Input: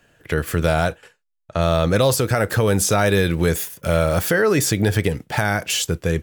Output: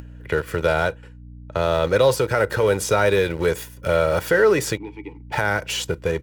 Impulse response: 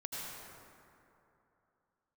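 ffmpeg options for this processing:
-filter_complex "[0:a]acrossover=split=320|3000[a][b][c];[a]acompressor=threshold=-25dB:ratio=4[d];[d][b][c]amix=inputs=3:normalize=0,asplit=2[e][f];[f]aeval=exprs='val(0)*gte(abs(val(0)),0.0841)':c=same,volume=-6dB[g];[e][g]amix=inputs=2:normalize=0,asplit=3[h][i][j];[h]afade=t=out:st=4.76:d=0.02[k];[i]asplit=3[l][m][n];[l]bandpass=f=300:t=q:w=8,volume=0dB[o];[m]bandpass=f=870:t=q:w=8,volume=-6dB[p];[n]bandpass=f=2.24k:t=q:w=8,volume=-9dB[q];[o][p][q]amix=inputs=3:normalize=0,afade=t=in:st=4.76:d=0.02,afade=t=out:st=5.31:d=0.02[r];[j]afade=t=in:st=5.31:d=0.02[s];[k][r][s]amix=inputs=3:normalize=0,aeval=exprs='val(0)+0.0158*(sin(2*PI*60*n/s)+sin(2*PI*2*60*n/s)/2+sin(2*PI*3*60*n/s)/3+sin(2*PI*4*60*n/s)/4+sin(2*PI*5*60*n/s)/5)':c=same,highpass=f=88:p=1,highshelf=f=4.8k:g=-11,aecho=1:1:2.1:0.43,acompressor=mode=upward:threshold=-30dB:ratio=2.5,volume=-3dB"

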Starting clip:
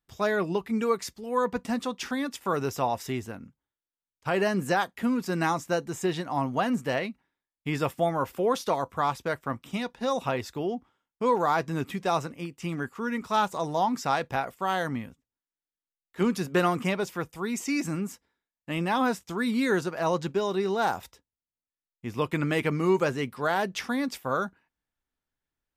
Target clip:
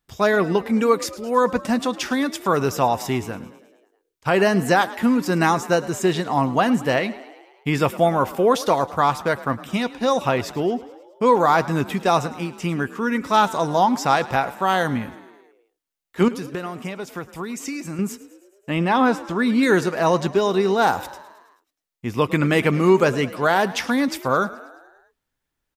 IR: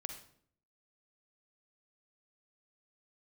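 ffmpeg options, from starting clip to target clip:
-filter_complex "[0:a]asettb=1/sr,asplit=3[a][b][c];[a]atrim=end=16.284[d];[b]atrim=start=16.28:end=17.99,asetpts=PTS-STARTPTS,afade=t=in:d=0.004:c=qsin,afade=t=out:st=1.706:d=0.004:c=qsin,acompressor=threshold=-35dB:ratio=10[e];[c]atrim=start=17.986[f];[d][e]acrossfade=d=0.004:c1=hsin:c2=qsin[g];[g][f]acrossfade=d=0.004:c1=qsin:c2=hsin,asettb=1/sr,asplit=3[h][i][j];[h]atrim=end=18.704[k];[i]atrim=start=18.7:end=19.63,asetpts=PTS-STARTPTS,afade=t=in:d=0.004:c=qsin,afade=t=out:st=0.926:d=0.004:c=qsin,lowpass=f=3.2k:p=1[l];[j]atrim=start=19.626[m];[k][l]acrossfade=d=0.004:c1=hsin:c2=qsin[n];[n][m]acrossfade=d=0.004:c1=qsin:c2=hsin,asplit=2[o][p];[p]asplit=6[q][r][s][t][u][v];[q]adelay=107,afreqshift=39,volume=-18dB[w];[r]adelay=214,afreqshift=78,volume=-22.3dB[x];[s]adelay=321,afreqshift=117,volume=-26.6dB[y];[t]adelay=428,afreqshift=156,volume=-30.9dB[z];[u]adelay=535,afreqshift=195,volume=-35.2dB[aa];[v]adelay=642,afreqshift=234,volume=-39.5dB[ab];[w][x][y][z][aa][ab]amix=inputs=6:normalize=0[ac];[o][ac]amix=inputs=2:normalize=0,volume=8dB"

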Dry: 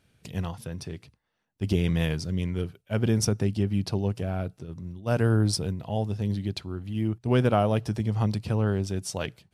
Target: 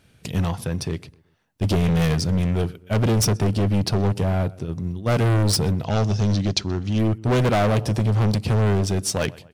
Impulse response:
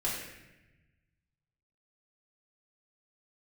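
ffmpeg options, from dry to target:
-filter_complex "[0:a]asplit=2[a][b];[b]aeval=exprs='sgn(val(0))*max(abs(val(0))-0.00631,0)':c=same,volume=-10dB[c];[a][c]amix=inputs=2:normalize=0,asplit=2[d][e];[e]adelay=126,lowpass=f=2.2k:p=1,volume=-24dB,asplit=2[f][g];[g]adelay=126,lowpass=f=2.2k:p=1,volume=0.44,asplit=2[h][i];[i]adelay=126,lowpass=f=2.2k:p=1,volume=0.44[j];[d][f][h][j]amix=inputs=4:normalize=0,asoftclip=type=hard:threshold=-25dB,asettb=1/sr,asplit=3[k][l][m];[k]atrim=end=5.844[n];[l]atrim=start=5.84:end=6.99,asetpts=PTS-STARTPTS,afade=t=in:d=0.004:c=qsin,afade=t=out:st=1.146:d=0.004:c=qsin,lowpass=f=6k:t=q:w=3.8[o];[m]atrim=start=6.986[p];[n][o]acrossfade=d=0.004:c1=hsin:c2=qsin[q];[q][p]acrossfade=d=0.004:c1=qsin:c2=hsin,volume=8.5dB"

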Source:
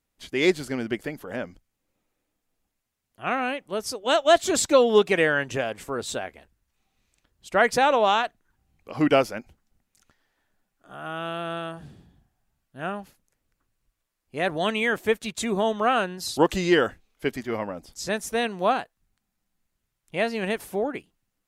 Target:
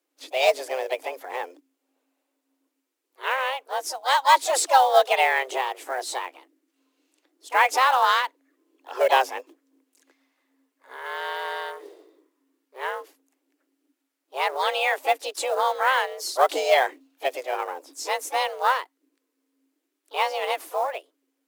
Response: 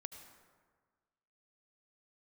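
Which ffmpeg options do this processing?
-filter_complex "[0:a]asplit=3[a][b][c];[b]asetrate=55563,aresample=44100,atempo=0.793701,volume=-11dB[d];[c]asetrate=58866,aresample=44100,atempo=0.749154,volume=-14dB[e];[a][d][e]amix=inputs=3:normalize=0,afreqshift=260,acrusher=bits=6:mode=log:mix=0:aa=0.000001"

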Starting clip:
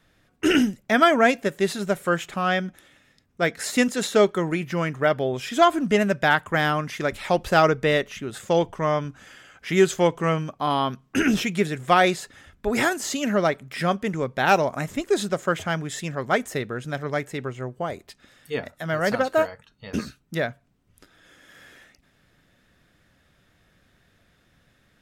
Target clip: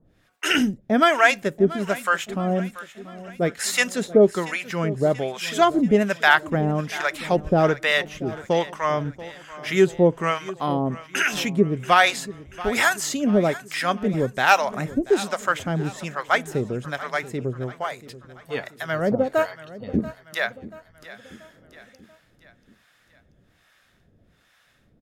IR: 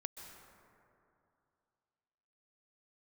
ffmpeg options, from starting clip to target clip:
-filter_complex "[0:a]acrossover=split=660[a][b];[a]aeval=exprs='val(0)*(1-1/2+1/2*cos(2*PI*1.2*n/s))':c=same[c];[b]aeval=exprs='val(0)*(1-1/2-1/2*cos(2*PI*1.2*n/s))':c=same[d];[c][d]amix=inputs=2:normalize=0,aecho=1:1:684|1368|2052|2736:0.141|0.0706|0.0353|0.0177,volume=5.5dB"

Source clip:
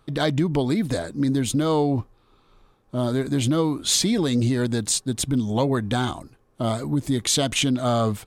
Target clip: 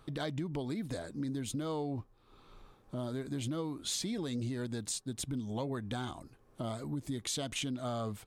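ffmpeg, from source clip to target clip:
-af "acompressor=threshold=-47dB:ratio=2"

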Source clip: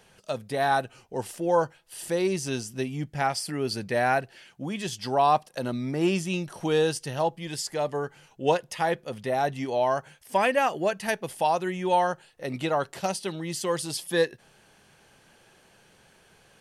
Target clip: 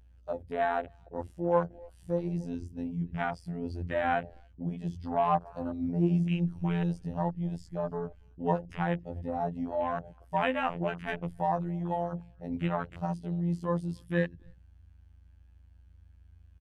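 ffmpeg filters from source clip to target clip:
-filter_complex "[0:a]highshelf=f=4.1k:g=-10.5,bandreject=f=60:t=h:w=6,bandreject=f=120:t=h:w=6,bandreject=f=180:t=h:w=6,bandreject=f=240:t=h:w=6,bandreject=f=300:t=h:w=6,bandreject=f=360:t=h:w=6,bandreject=f=420:t=h:w=6,bandreject=f=480:t=h:w=6,bandreject=f=540:t=h:w=6,asplit=2[a][b];[b]adelay=280,highpass=300,lowpass=3.4k,asoftclip=type=hard:threshold=-19dB,volume=-19dB[c];[a][c]amix=inputs=2:normalize=0,asubboost=boost=8:cutoff=130,afftfilt=real='hypot(re,im)*cos(PI*b)':imag='0':win_size=2048:overlap=0.75,aeval=exprs='val(0)+0.002*(sin(2*PI*60*n/s)+sin(2*PI*2*60*n/s)/2+sin(2*PI*3*60*n/s)/3+sin(2*PI*4*60*n/s)/4+sin(2*PI*5*60*n/s)/5)':c=same,afwtdn=0.0126"

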